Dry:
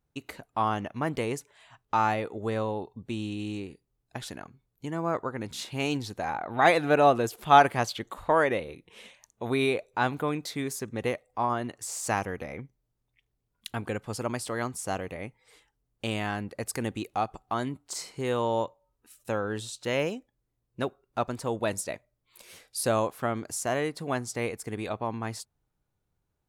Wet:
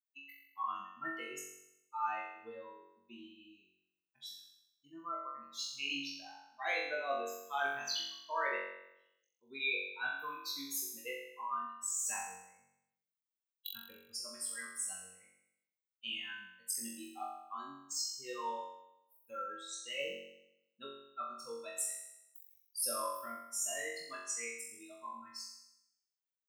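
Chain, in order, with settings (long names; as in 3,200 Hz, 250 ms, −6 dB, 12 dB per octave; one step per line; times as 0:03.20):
spectral dynamics exaggerated over time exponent 3
high-pass filter 870 Hz 12 dB per octave
high-shelf EQ 8,000 Hz +8.5 dB
reversed playback
downward compressor 5 to 1, threshold −45 dBFS, peak gain reduction 24 dB
reversed playback
flutter between parallel walls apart 3.7 metres, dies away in 0.83 s
level +6 dB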